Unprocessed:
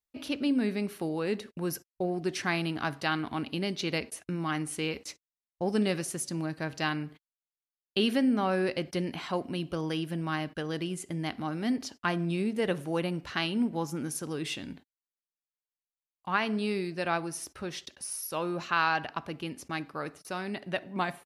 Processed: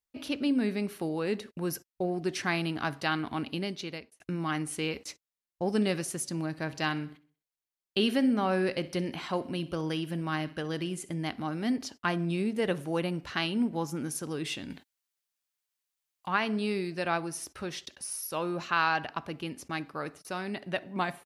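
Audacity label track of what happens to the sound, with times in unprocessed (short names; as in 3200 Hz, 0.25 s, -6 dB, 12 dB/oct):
3.500000	4.200000	fade out
6.480000	11.140000	feedback echo 64 ms, feedback 45%, level -18.5 dB
14.700000	17.980000	mismatched tape noise reduction encoder only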